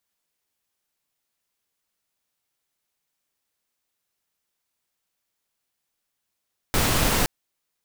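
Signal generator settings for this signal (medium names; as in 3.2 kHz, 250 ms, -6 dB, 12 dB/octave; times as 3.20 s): noise pink, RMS -21 dBFS 0.52 s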